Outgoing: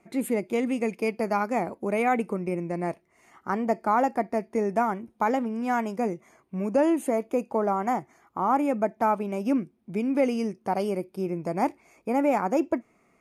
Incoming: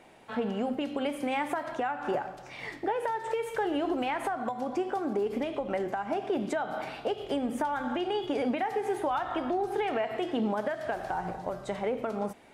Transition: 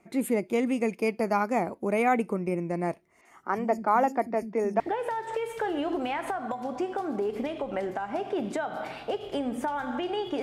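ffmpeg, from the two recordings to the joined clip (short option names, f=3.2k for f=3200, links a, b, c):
-filter_complex "[0:a]asettb=1/sr,asplit=3[a][b][c];[a]atrim=end=3.214[d];[b]atrim=start=3.21:end=4.8,asetpts=PTS-STARTPTS,afade=t=in:d=0.004:c=qsin,afade=t=out:st=1.586:d=0.004:c=qsin,acrossover=split=220|4700[e][f][g];[g]adelay=40[h];[e]adelay=90[i];[i][f][h]amix=inputs=3:normalize=0,atrim=end_sample=70119[j];[c]atrim=start=4.796[k];[d][j]acrossfade=d=0.004:c1=hsin:c2=qsin[l];[l][k]acrossfade=d=0.004:c1=qsin:c2=hsin,apad=whole_dur=10.42,atrim=end=10.42,atrim=end=4.802[m];[1:a]atrim=start=2.768:end=8.39[n];[m][n]acrossfade=d=0.004:c1=hsin:c2=hsin"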